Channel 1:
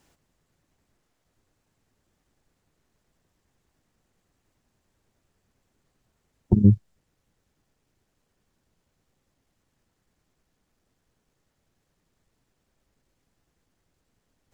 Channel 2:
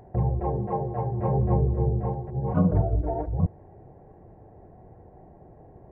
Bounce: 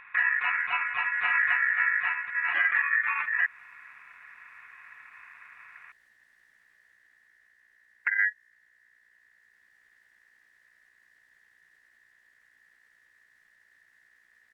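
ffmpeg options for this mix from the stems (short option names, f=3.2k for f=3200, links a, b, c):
-filter_complex "[0:a]dynaudnorm=f=130:g=17:m=6.5dB,aeval=exprs='val(0)+0.00112*(sin(2*PI*60*n/s)+sin(2*PI*2*60*n/s)/2+sin(2*PI*3*60*n/s)/3+sin(2*PI*4*60*n/s)/4+sin(2*PI*5*60*n/s)/5)':c=same,adelay=1550,volume=-1dB[a];[1:a]volume=2dB[b];[a][b]amix=inputs=2:normalize=0,aeval=exprs='val(0)*sin(2*PI*1800*n/s)':c=same,alimiter=limit=-13.5dB:level=0:latency=1:release=152"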